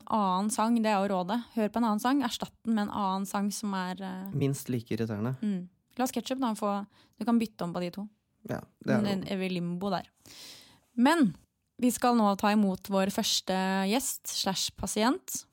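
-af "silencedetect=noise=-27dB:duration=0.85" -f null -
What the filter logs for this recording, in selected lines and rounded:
silence_start: 10.00
silence_end: 10.98 | silence_duration: 0.98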